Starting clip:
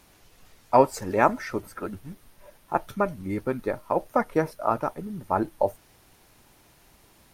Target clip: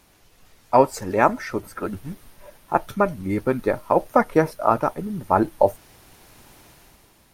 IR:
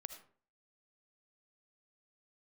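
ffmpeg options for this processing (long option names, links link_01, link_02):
-af "dynaudnorm=framelen=110:gausssize=11:maxgain=8.5dB"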